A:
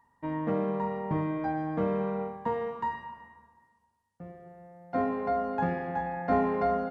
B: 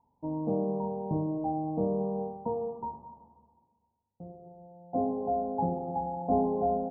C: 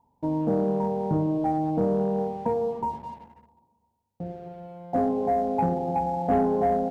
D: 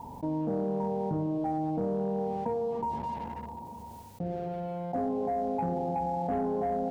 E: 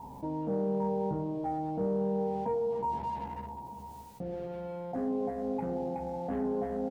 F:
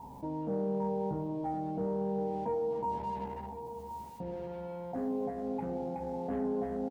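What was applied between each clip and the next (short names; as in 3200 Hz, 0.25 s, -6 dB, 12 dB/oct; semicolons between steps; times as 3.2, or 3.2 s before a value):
elliptic low-pass 860 Hz, stop band 50 dB
in parallel at +1 dB: compressor 6:1, threshold -38 dBFS, peak gain reduction 15 dB; on the sum: sample leveller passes 1
fast leveller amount 70%; gain -9 dB
doubler 15 ms -4 dB; gain -3.5 dB
echo 1.063 s -12 dB; gain -2 dB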